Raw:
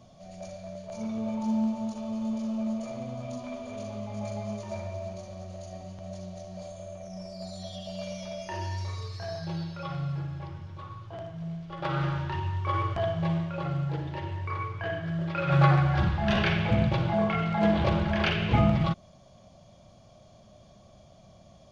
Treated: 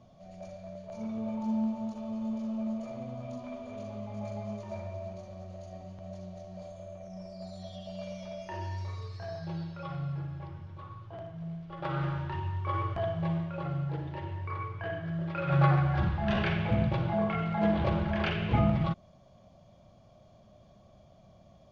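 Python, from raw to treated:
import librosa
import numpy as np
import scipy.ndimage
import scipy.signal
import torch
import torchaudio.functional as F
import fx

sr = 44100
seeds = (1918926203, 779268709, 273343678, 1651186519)

y = fx.lowpass(x, sr, hz=2500.0, slope=6)
y = y * librosa.db_to_amplitude(-3.0)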